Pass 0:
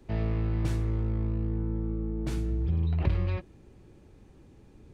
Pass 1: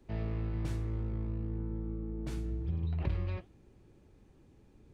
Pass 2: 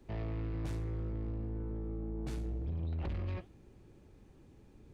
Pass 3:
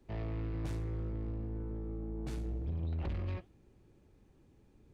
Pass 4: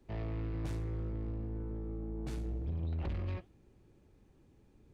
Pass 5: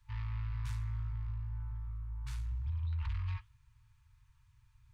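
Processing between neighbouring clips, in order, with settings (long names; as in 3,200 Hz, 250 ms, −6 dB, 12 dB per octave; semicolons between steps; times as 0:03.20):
flanger 1.7 Hz, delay 3.1 ms, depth 5.6 ms, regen −89%; level −2 dB
soft clipping −35 dBFS, distortion −11 dB; level +2 dB
expander for the loud parts 1.5 to 1, over −47 dBFS; level +1 dB
no processing that can be heard
brick-wall band-stop 130–880 Hz; level +1 dB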